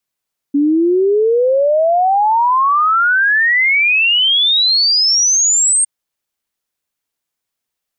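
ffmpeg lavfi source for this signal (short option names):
-f lavfi -i "aevalsrc='0.335*clip(min(t,5.31-t)/0.01,0,1)*sin(2*PI*280*5.31/log(8700/280)*(exp(log(8700/280)*t/5.31)-1))':d=5.31:s=44100"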